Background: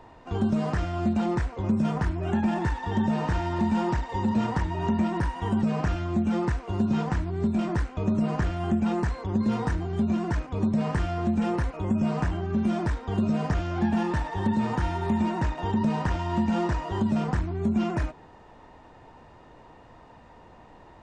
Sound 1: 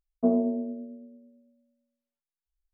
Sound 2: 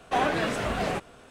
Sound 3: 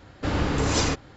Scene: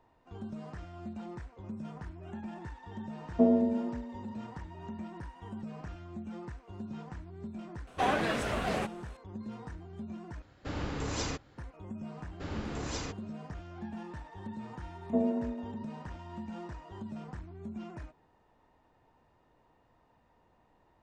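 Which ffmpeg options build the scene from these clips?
-filter_complex "[1:a]asplit=2[s0][s1];[3:a]asplit=2[s2][s3];[0:a]volume=0.141,asplit=2[s4][s5];[s4]atrim=end=10.424[s6];[s2]atrim=end=1.16,asetpts=PTS-STARTPTS,volume=0.266[s7];[s5]atrim=start=11.576[s8];[s0]atrim=end=2.73,asetpts=PTS-STARTPTS,volume=0.944,afade=t=in:d=0.004:c=hsin,afade=t=out:st=2.726:d=0.004:c=hsin,adelay=3160[s9];[2:a]atrim=end=1.3,asetpts=PTS-STARTPTS,volume=0.631,afade=t=in:d=0.004:c=hsin,afade=t=out:st=1.296:d=0.004:c=hsin,adelay=7870[s10];[s3]atrim=end=1.16,asetpts=PTS-STARTPTS,volume=0.188,afade=t=in:d=0.004:c=hsin,afade=t=out:st=1.156:d=0.004:c=hsin,adelay=12170[s11];[s1]atrim=end=2.73,asetpts=PTS-STARTPTS,volume=0.531,afade=t=in:d=0.004:c=hsin,afade=t=out:st=2.726:d=0.004:c=hsin,adelay=14900[s12];[s6][s7]acrossfade=d=0.004:c1=hsin:c2=hsin[s13];[s13][s8]acrossfade=d=0.004:c1=hsin:c2=hsin[s14];[s14][s9][s10][s11][s12]amix=inputs=5:normalize=0"

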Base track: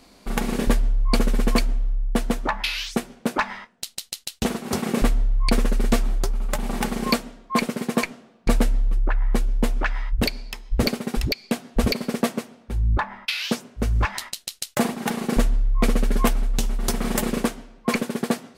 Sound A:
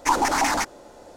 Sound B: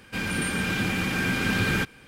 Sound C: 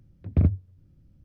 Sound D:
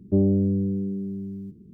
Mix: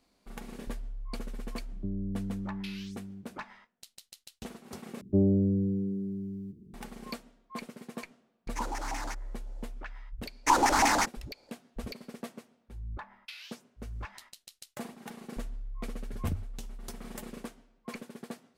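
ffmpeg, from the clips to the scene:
-filter_complex "[4:a]asplit=2[s0][s1];[1:a]asplit=2[s2][s3];[0:a]volume=0.112[s4];[s0]acrossover=split=130|260[s5][s6][s7];[s5]acompressor=threshold=0.0158:ratio=4[s8];[s6]acompressor=threshold=0.0398:ratio=4[s9];[s7]acompressor=threshold=0.00316:ratio=4[s10];[s8][s9][s10]amix=inputs=3:normalize=0[s11];[s3]agate=range=0.158:threshold=0.00631:ratio=16:release=56:detection=peak[s12];[s4]asplit=2[s13][s14];[s13]atrim=end=5.014[s15];[s1]atrim=end=1.73,asetpts=PTS-STARTPTS,volume=0.631[s16];[s14]atrim=start=6.736[s17];[s11]atrim=end=1.73,asetpts=PTS-STARTPTS,volume=0.422,afade=t=in:d=0.004:c=hsin,afade=t=out:st=1.726:d=0.004:c=hsin,adelay=1710[s18];[s2]atrim=end=1.16,asetpts=PTS-STARTPTS,volume=0.158,afade=t=in:d=0.004:c=hsin,afade=t=out:st=1.156:d=0.004:c=hsin,adelay=374850S[s19];[s12]atrim=end=1.16,asetpts=PTS-STARTPTS,volume=0.75,afade=t=in:d=0.05,afade=t=out:st=1.11:d=0.05,adelay=10410[s20];[3:a]atrim=end=1.24,asetpts=PTS-STARTPTS,volume=0.211,afade=t=in:d=0.004:c=hsin,afade=t=out:st=1.236:d=0.004:c=hsin,adelay=15870[s21];[s15][s16]acrossfade=d=0.004:c1=hsin:c2=hsin[s22];[s22][s17]acrossfade=d=0.004:c1=hsin:c2=hsin[s23];[s23][s18][s19][s20][s21]amix=inputs=5:normalize=0"

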